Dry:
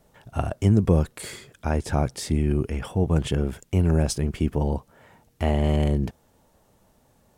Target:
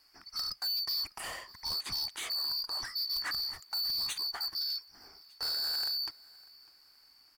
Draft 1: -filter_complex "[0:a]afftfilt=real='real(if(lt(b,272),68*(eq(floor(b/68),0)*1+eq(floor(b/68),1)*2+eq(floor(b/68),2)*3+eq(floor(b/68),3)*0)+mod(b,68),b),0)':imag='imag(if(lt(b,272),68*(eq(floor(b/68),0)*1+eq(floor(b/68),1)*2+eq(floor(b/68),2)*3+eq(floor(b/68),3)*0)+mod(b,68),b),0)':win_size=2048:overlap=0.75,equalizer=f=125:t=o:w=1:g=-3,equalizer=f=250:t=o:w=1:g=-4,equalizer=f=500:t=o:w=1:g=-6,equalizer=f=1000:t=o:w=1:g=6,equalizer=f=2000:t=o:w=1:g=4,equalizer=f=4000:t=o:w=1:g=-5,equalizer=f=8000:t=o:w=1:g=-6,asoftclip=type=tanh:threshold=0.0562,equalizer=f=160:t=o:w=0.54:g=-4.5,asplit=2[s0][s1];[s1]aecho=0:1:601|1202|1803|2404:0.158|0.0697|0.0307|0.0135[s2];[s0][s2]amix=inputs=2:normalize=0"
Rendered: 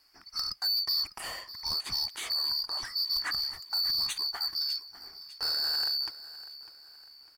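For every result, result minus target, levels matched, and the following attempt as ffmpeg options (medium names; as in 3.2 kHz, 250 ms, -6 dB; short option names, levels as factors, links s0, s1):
echo-to-direct +7.5 dB; saturation: distortion -4 dB
-filter_complex "[0:a]afftfilt=real='real(if(lt(b,272),68*(eq(floor(b/68),0)*1+eq(floor(b/68),1)*2+eq(floor(b/68),2)*3+eq(floor(b/68),3)*0)+mod(b,68),b),0)':imag='imag(if(lt(b,272),68*(eq(floor(b/68),0)*1+eq(floor(b/68),1)*2+eq(floor(b/68),2)*3+eq(floor(b/68),3)*0)+mod(b,68),b),0)':win_size=2048:overlap=0.75,equalizer=f=125:t=o:w=1:g=-3,equalizer=f=250:t=o:w=1:g=-4,equalizer=f=500:t=o:w=1:g=-6,equalizer=f=1000:t=o:w=1:g=6,equalizer=f=2000:t=o:w=1:g=4,equalizer=f=4000:t=o:w=1:g=-5,equalizer=f=8000:t=o:w=1:g=-6,asoftclip=type=tanh:threshold=0.0562,equalizer=f=160:t=o:w=0.54:g=-4.5,asplit=2[s0][s1];[s1]aecho=0:1:601|1202|1803:0.0668|0.0294|0.0129[s2];[s0][s2]amix=inputs=2:normalize=0"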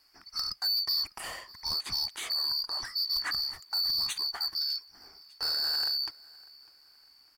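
saturation: distortion -4 dB
-filter_complex "[0:a]afftfilt=real='real(if(lt(b,272),68*(eq(floor(b/68),0)*1+eq(floor(b/68),1)*2+eq(floor(b/68),2)*3+eq(floor(b/68),3)*0)+mod(b,68),b),0)':imag='imag(if(lt(b,272),68*(eq(floor(b/68),0)*1+eq(floor(b/68),1)*2+eq(floor(b/68),2)*3+eq(floor(b/68),3)*0)+mod(b,68),b),0)':win_size=2048:overlap=0.75,equalizer=f=125:t=o:w=1:g=-3,equalizer=f=250:t=o:w=1:g=-4,equalizer=f=500:t=o:w=1:g=-6,equalizer=f=1000:t=o:w=1:g=6,equalizer=f=2000:t=o:w=1:g=4,equalizer=f=4000:t=o:w=1:g=-5,equalizer=f=8000:t=o:w=1:g=-6,asoftclip=type=tanh:threshold=0.0282,equalizer=f=160:t=o:w=0.54:g=-4.5,asplit=2[s0][s1];[s1]aecho=0:1:601|1202|1803:0.0668|0.0294|0.0129[s2];[s0][s2]amix=inputs=2:normalize=0"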